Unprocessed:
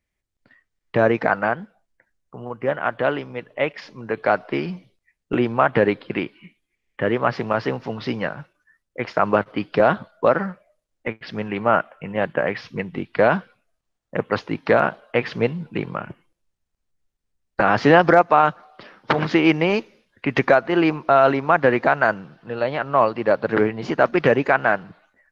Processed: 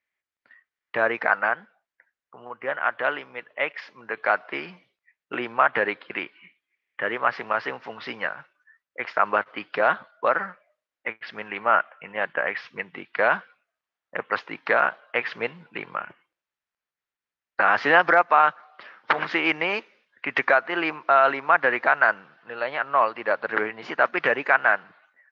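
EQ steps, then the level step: band-pass filter 1.7 kHz, Q 1; +2.0 dB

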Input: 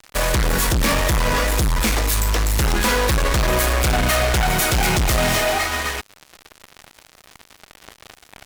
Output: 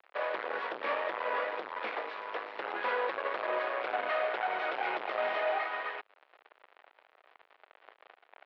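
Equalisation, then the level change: high-pass 460 Hz 24 dB/octave; Bessel low-pass 3 kHz, order 8; distance through air 420 m; -7.5 dB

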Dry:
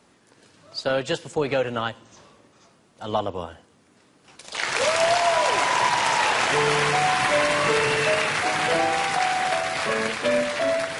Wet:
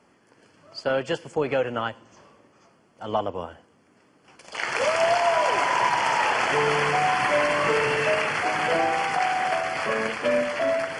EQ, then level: Butterworth band-stop 3.8 kHz, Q 4.5; bass shelf 160 Hz -5 dB; treble shelf 4.7 kHz -10.5 dB; 0.0 dB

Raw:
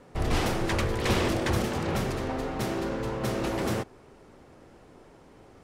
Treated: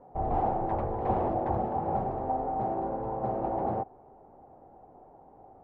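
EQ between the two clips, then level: resonant low-pass 780 Hz, resonance Q 6.6; -6.5 dB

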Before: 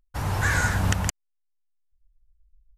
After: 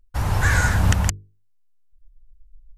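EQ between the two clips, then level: bass shelf 72 Hz +11.5 dB; hum notches 50/100/150/200/250/300/350/400/450 Hz; +2.5 dB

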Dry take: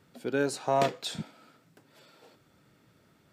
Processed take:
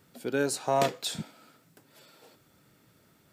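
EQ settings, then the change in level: treble shelf 7.8 kHz +11.5 dB; 0.0 dB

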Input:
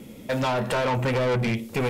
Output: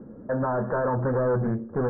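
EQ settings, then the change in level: rippled Chebyshev low-pass 1.7 kHz, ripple 3 dB; distance through air 310 m; +1.5 dB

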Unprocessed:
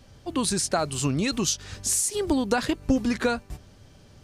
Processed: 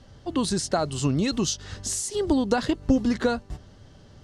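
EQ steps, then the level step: band-stop 2.4 kHz, Q 7.1; dynamic bell 1.6 kHz, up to -4 dB, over -40 dBFS, Q 0.84; distance through air 64 m; +2.0 dB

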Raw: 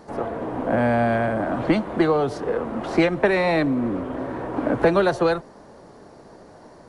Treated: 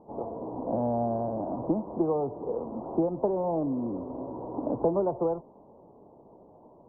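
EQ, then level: elliptic low-pass 970 Hz, stop band 50 dB; bass shelf 68 Hz -6 dB; -7.0 dB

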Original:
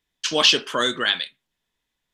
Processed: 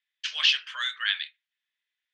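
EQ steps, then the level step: ladder high-pass 1.5 kHz, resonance 35%; low-pass 4.1 kHz 12 dB/octave; +1.5 dB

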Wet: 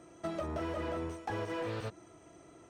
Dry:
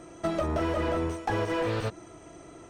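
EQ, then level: high-pass 56 Hz; -8.5 dB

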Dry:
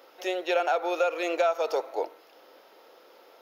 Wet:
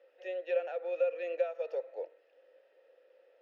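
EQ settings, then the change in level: vowel filter e; peaking EQ 1.1 kHz +14 dB 0.41 oct; -3.5 dB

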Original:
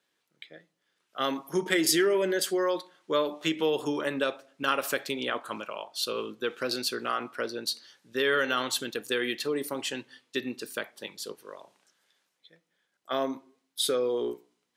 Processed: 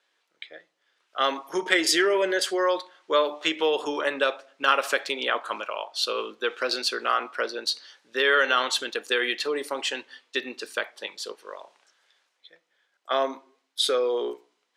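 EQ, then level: high-pass 510 Hz 12 dB/octave; distance through air 64 m; +7.0 dB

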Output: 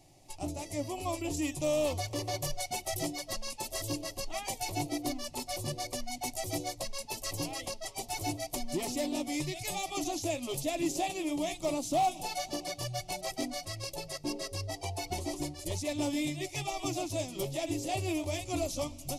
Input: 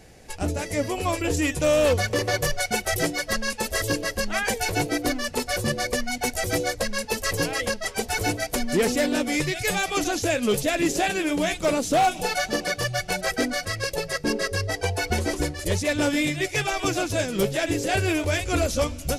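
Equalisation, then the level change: static phaser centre 310 Hz, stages 8; -7.5 dB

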